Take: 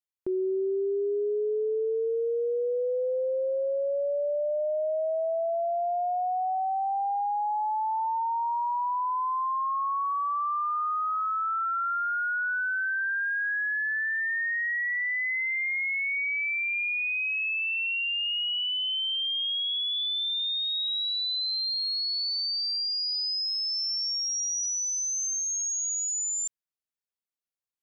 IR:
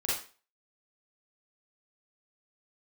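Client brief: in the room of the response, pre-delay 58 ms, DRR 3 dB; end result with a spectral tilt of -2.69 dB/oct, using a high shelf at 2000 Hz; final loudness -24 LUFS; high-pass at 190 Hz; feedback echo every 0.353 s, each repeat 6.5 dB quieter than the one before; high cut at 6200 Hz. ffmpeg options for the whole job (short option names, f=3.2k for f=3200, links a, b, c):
-filter_complex "[0:a]highpass=190,lowpass=6.2k,highshelf=f=2k:g=-3,aecho=1:1:353|706|1059|1412|1765|2118:0.473|0.222|0.105|0.0491|0.0231|0.0109,asplit=2[a][b];[1:a]atrim=start_sample=2205,adelay=58[c];[b][c]afir=irnorm=-1:irlink=0,volume=-9.5dB[d];[a][d]amix=inputs=2:normalize=0,volume=2dB"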